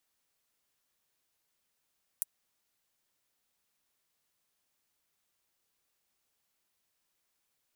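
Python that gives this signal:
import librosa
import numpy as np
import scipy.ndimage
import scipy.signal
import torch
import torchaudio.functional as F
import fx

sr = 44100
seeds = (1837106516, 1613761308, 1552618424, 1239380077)

y = fx.drum_hat(sr, length_s=0.24, from_hz=9300.0, decay_s=0.03)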